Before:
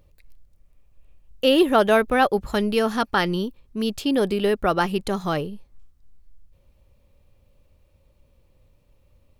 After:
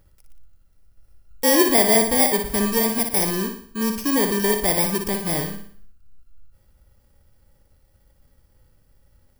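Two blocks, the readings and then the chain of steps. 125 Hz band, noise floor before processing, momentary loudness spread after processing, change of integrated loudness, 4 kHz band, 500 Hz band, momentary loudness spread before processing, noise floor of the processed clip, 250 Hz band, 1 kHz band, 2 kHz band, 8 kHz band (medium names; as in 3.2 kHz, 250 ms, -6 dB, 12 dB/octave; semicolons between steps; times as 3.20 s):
+0.5 dB, -61 dBFS, 11 LU, +2.5 dB, +1.5 dB, -1.5 dB, 11 LU, -60 dBFS, +0.5 dB, -3.0 dB, -0.5 dB, +19.5 dB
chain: bit-reversed sample order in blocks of 32 samples; flutter echo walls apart 10.1 m, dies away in 0.53 s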